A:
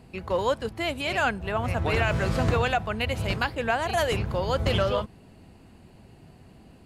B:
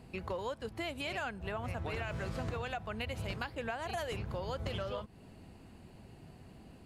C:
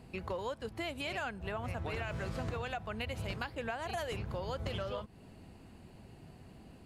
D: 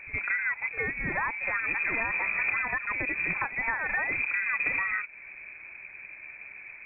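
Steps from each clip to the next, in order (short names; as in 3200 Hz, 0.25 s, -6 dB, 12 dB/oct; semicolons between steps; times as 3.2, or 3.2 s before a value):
compressor 5:1, threshold -33 dBFS, peak gain reduction 13 dB; gain -3 dB
nothing audible
pre-echo 65 ms -14 dB; inverted band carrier 2500 Hz; gain +8.5 dB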